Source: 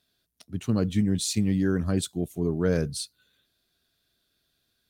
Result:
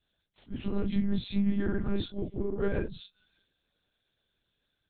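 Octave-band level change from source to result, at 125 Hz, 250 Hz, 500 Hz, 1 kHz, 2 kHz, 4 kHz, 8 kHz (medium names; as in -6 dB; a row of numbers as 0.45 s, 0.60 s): -8.0 dB, -4.5 dB, -4.5 dB, -3.5 dB, -4.0 dB, -9.0 dB, under -40 dB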